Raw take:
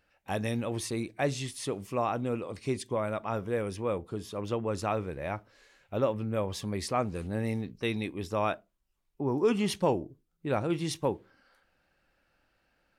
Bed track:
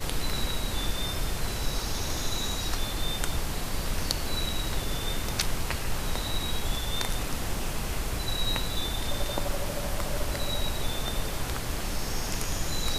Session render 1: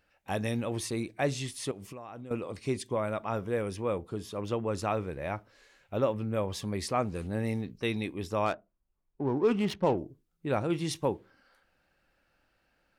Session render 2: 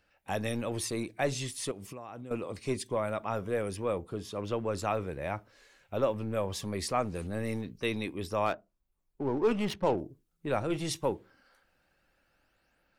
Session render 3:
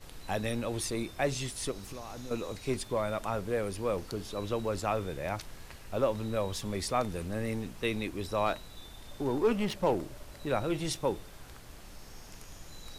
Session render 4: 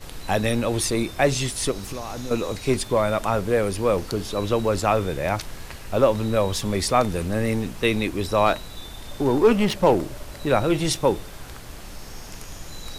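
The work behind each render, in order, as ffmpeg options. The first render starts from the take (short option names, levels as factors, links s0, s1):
-filter_complex "[0:a]asettb=1/sr,asplit=3[s0][s1][s2];[s0]atrim=end=1.714[s3];[s1]atrim=start=1.71:end=2.31,asetpts=PTS-STARTPTS,afade=t=in:d=0.004:c=qsin,afade=t=out:st=0.596:d=0.004:c=qsin,acompressor=threshold=0.0112:ratio=16:attack=3.2:release=140:knee=1:detection=peak[s4];[s2]atrim=start=2.306[s5];[s3][s4]acrossfade=d=0.004:c1=hsin:c2=qsin[s6];[s6][s5]acrossfade=d=0.004:c1=qsin:c2=hsin,asettb=1/sr,asplit=3[s7][s8][s9];[s7]atrim=end=8.464[s10];[s8]atrim=start=8.46:end=9.98,asetpts=PTS-STARTPTS,afade=t=in:d=0.004:c=qsin,afade=t=out:st=1.516:d=0.004:c=qsin,adynamicsmooth=sensitivity=6:basefreq=1500[s11];[s9]atrim=start=9.976[s12];[s10][s11]acrossfade=d=0.004:c1=hsin:c2=qsin[s13];[s13][s12]acrossfade=d=0.004:c1=qsin:c2=hsin"
-filter_complex "[0:a]acrossover=split=410|4600[s0][s1][s2];[s0]aeval=exprs='clip(val(0),-1,0.0178)':c=same[s3];[s2]aphaser=in_gain=1:out_gain=1:delay=2.3:decay=0.65:speed=0.23:type=sinusoidal[s4];[s3][s1][s4]amix=inputs=3:normalize=0"
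-filter_complex "[1:a]volume=0.126[s0];[0:a][s0]amix=inputs=2:normalize=0"
-af "volume=3.35"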